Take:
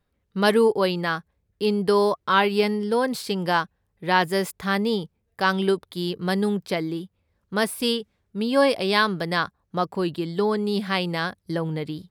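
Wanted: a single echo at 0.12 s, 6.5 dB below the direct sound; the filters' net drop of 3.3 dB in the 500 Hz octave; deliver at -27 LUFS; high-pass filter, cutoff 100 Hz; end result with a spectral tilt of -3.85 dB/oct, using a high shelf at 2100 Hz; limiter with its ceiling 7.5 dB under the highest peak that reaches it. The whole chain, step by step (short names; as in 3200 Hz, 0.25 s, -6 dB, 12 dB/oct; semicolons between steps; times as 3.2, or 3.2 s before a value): HPF 100 Hz; bell 500 Hz -4.5 dB; high shelf 2100 Hz +7.5 dB; limiter -9 dBFS; echo 0.12 s -6.5 dB; gain -3.5 dB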